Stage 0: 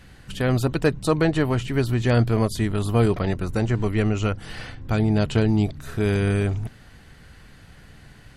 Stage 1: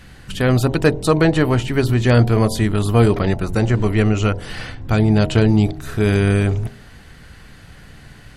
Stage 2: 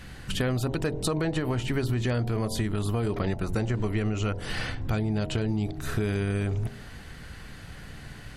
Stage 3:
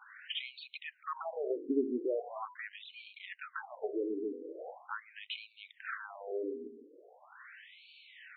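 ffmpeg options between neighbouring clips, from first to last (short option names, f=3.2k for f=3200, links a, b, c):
-af "bandreject=f=45.01:t=h:w=4,bandreject=f=90.02:t=h:w=4,bandreject=f=135.03:t=h:w=4,bandreject=f=180.04:t=h:w=4,bandreject=f=225.05:t=h:w=4,bandreject=f=270.06:t=h:w=4,bandreject=f=315.07:t=h:w=4,bandreject=f=360.08:t=h:w=4,bandreject=f=405.09:t=h:w=4,bandreject=f=450.1:t=h:w=4,bandreject=f=495.11:t=h:w=4,bandreject=f=540.12:t=h:w=4,bandreject=f=585.13:t=h:w=4,bandreject=f=630.14:t=h:w=4,bandreject=f=675.15:t=h:w=4,bandreject=f=720.16:t=h:w=4,bandreject=f=765.17:t=h:w=4,bandreject=f=810.18:t=h:w=4,bandreject=f=855.19:t=h:w=4,bandreject=f=900.2:t=h:w=4,bandreject=f=945.21:t=h:w=4,bandreject=f=990.22:t=h:w=4,volume=6dB"
-af "alimiter=limit=-7.5dB:level=0:latency=1:release=47,acompressor=threshold=-23dB:ratio=6,volume=-1dB"
-af "highshelf=f=6.8k:g=-12,afftfilt=real='re*between(b*sr/1024,330*pow(3200/330,0.5+0.5*sin(2*PI*0.41*pts/sr))/1.41,330*pow(3200/330,0.5+0.5*sin(2*PI*0.41*pts/sr))*1.41)':imag='im*between(b*sr/1024,330*pow(3200/330,0.5+0.5*sin(2*PI*0.41*pts/sr))/1.41,330*pow(3200/330,0.5+0.5*sin(2*PI*0.41*pts/sr))*1.41)':win_size=1024:overlap=0.75"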